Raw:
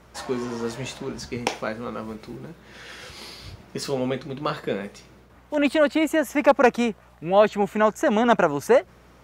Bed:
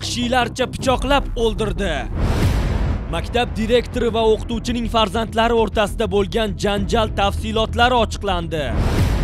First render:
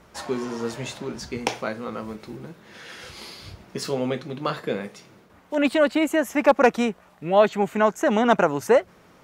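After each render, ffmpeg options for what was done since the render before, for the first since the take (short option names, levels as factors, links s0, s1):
-af "bandreject=f=60:t=h:w=4,bandreject=f=120:t=h:w=4"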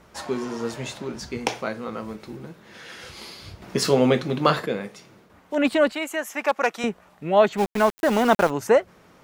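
-filter_complex "[0:a]asettb=1/sr,asplit=3[s0][s1][s2];[s0]atrim=end=5.924[s3];[s1]atrim=start=5.92:end=6.84,asetpts=PTS-STARTPTS,afade=t=in:d=0.004:c=qsin,afade=t=out:st=0.916:d=0.004:c=qsin,highpass=f=1100:p=1[s4];[s2]atrim=start=6.836[s5];[s3][s4]acrossfade=d=0.004:c1=hsin:c2=qsin[s6];[s6][s5]acrossfade=d=0.004:c1=qsin:c2=hsin,asplit=3[s7][s8][s9];[s7]afade=t=out:st=7.57:d=0.02[s10];[s8]aeval=exprs='val(0)*gte(abs(val(0)),0.0447)':c=same,afade=t=in:st=7.57:d=0.02,afade=t=out:st=8.49:d=0.02[s11];[s9]afade=t=in:st=8.49:d=0.02[s12];[s10][s11][s12]amix=inputs=3:normalize=0,asplit=3[s13][s14][s15];[s13]atrim=end=3.622[s16];[s14]atrim=start=3.618:end=4.662,asetpts=PTS-STARTPTS,volume=2.37[s17];[s15]atrim=start=4.658[s18];[s16][s17]acrossfade=d=0.004:c1=hsin:c2=hsin[s19];[s19][s18]acrossfade=d=0.004:c1=hsin:c2=hsin"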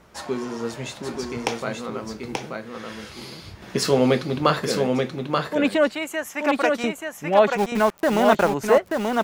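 -af "aecho=1:1:882:0.631"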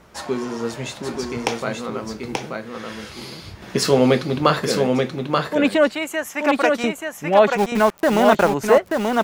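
-af "volume=1.41,alimiter=limit=0.794:level=0:latency=1"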